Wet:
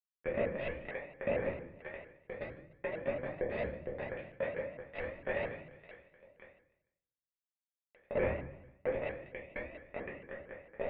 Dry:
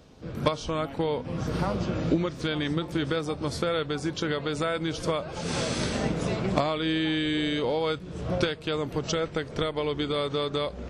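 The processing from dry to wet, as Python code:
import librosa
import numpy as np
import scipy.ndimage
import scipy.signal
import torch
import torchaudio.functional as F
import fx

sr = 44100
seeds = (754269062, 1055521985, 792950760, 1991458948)

y = fx.low_shelf(x, sr, hz=210.0, db=-6.5)
y = fx.over_compress(y, sr, threshold_db=-37.0, ratio=-1.0)
y = fx.fixed_phaser(y, sr, hz=2400.0, stages=8)
y = fx.cheby_harmonics(y, sr, harmonics=(3, 4, 6, 7), levels_db=(-20, -33, -42, -20), full_scale_db=-19.0)
y = fx.fuzz(y, sr, gain_db=35.0, gate_db=-41.0)
y = fx.formant_cascade(y, sr, vowel='e')
y = fx.echo_feedback(y, sr, ms=149, feedback_pct=40, wet_db=-18.0)
y = fx.room_shoebox(y, sr, seeds[0], volume_m3=81.0, walls='mixed', distance_m=1.3)
y = fx.vibrato_shape(y, sr, shape='saw_up', rate_hz=4.4, depth_cents=160.0)
y = F.gain(torch.from_numpy(y), 3.5).numpy()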